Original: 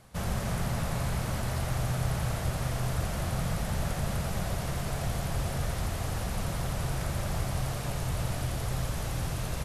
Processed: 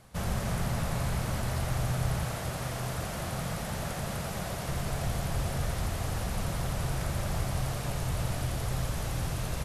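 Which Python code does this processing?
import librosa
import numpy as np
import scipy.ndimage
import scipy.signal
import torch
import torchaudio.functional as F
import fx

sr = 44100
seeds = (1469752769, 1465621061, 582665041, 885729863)

y = fx.low_shelf(x, sr, hz=94.0, db=-11.0, at=(2.24, 4.69))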